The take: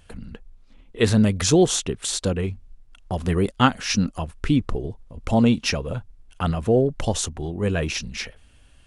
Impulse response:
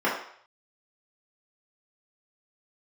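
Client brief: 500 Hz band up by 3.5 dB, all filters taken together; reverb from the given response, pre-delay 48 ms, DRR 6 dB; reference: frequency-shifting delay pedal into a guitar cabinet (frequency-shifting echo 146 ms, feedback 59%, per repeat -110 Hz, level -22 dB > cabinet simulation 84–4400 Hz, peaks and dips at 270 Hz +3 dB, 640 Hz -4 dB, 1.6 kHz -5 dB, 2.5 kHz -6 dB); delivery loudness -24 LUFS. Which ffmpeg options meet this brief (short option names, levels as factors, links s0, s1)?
-filter_complex "[0:a]equalizer=f=500:t=o:g=5,asplit=2[s0][s1];[1:a]atrim=start_sample=2205,adelay=48[s2];[s1][s2]afir=irnorm=-1:irlink=0,volume=0.0841[s3];[s0][s3]amix=inputs=2:normalize=0,asplit=5[s4][s5][s6][s7][s8];[s5]adelay=146,afreqshift=-110,volume=0.0794[s9];[s6]adelay=292,afreqshift=-220,volume=0.0468[s10];[s7]adelay=438,afreqshift=-330,volume=0.0275[s11];[s8]adelay=584,afreqshift=-440,volume=0.0164[s12];[s4][s9][s10][s11][s12]amix=inputs=5:normalize=0,highpass=84,equalizer=f=270:t=q:w=4:g=3,equalizer=f=640:t=q:w=4:g=-4,equalizer=f=1600:t=q:w=4:g=-5,equalizer=f=2500:t=q:w=4:g=-6,lowpass=f=4400:w=0.5412,lowpass=f=4400:w=1.3066,volume=0.631"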